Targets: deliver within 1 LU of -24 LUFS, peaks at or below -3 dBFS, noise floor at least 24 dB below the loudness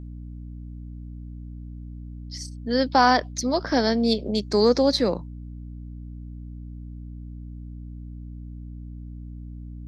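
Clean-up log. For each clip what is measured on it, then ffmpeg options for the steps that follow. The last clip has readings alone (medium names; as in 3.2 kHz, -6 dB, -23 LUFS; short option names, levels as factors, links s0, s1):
hum 60 Hz; highest harmonic 300 Hz; hum level -35 dBFS; loudness -22.0 LUFS; peak level -5.0 dBFS; loudness target -24.0 LUFS
-> -af "bandreject=f=60:t=h:w=6,bandreject=f=120:t=h:w=6,bandreject=f=180:t=h:w=6,bandreject=f=240:t=h:w=6,bandreject=f=300:t=h:w=6"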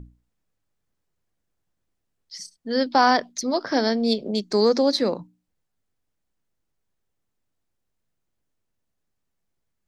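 hum not found; loudness -22.0 LUFS; peak level -5.5 dBFS; loudness target -24.0 LUFS
-> -af "volume=0.794"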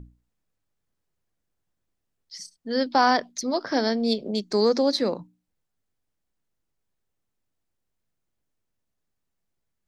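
loudness -24.0 LUFS; peak level -7.5 dBFS; noise floor -79 dBFS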